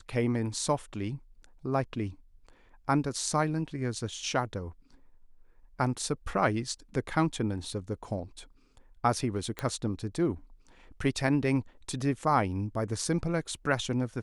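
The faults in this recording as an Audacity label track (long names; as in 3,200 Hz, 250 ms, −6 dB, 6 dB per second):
9.590000	9.590000	click −18 dBFS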